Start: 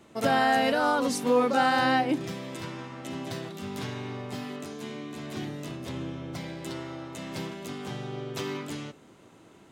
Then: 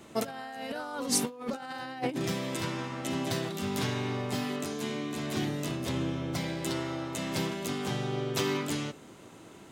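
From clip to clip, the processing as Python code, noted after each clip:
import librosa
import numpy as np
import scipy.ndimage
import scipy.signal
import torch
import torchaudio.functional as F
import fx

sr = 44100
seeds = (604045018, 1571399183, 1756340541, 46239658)

y = fx.over_compress(x, sr, threshold_db=-30.0, ratio=-0.5)
y = fx.high_shelf(y, sr, hz=5300.0, db=5.0)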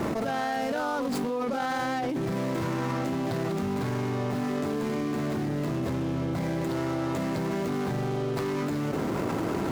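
y = scipy.signal.medfilt(x, 15)
y = 10.0 ** (-26.5 / 20.0) * np.tanh(y / 10.0 ** (-26.5 / 20.0))
y = fx.env_flatten(y, sr, amount_pct=100)
y = y * librosa.db_to_amplitude(2.0)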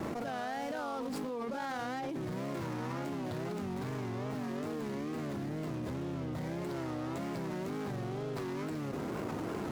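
y = fx.wow_flutter(x, sr, seeds[0], rate_hz=2.1, depth_cents=120.0)
y = y * librosa.db_to_amplitude(-8.5)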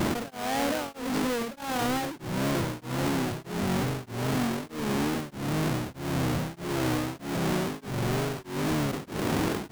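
y = fx.halfwave_hold(x, sr)
y = fx.sample_hold(y, sr, seeds[1], rate_hz=13000.0, jitter_pct=0)
y = y * np.abs(np.cos(np.pi * 1.6 * np.arange(len(y)) / sr))
y = y * librosa.db_to_amplitude(7.5)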